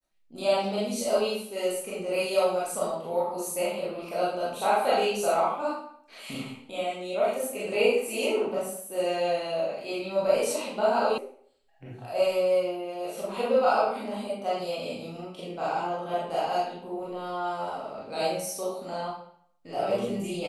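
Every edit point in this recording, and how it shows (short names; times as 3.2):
11.18 sound cut off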